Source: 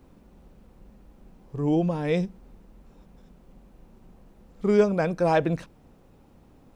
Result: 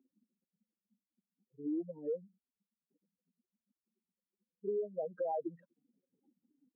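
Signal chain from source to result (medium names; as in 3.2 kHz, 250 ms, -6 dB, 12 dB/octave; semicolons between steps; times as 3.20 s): spectral contrast enhancement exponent 4; high-pass 290 Hz 24 dB/octave; 1.98–4.67 s: comb 2.1 ms, depth 39%; compression 12:1, threshold -25 dBFS, peak gain reduction 10.5 dB; 3.69–5.09 s: spectral selection erased 1.2–2.4 kHz; trim -7.5 dB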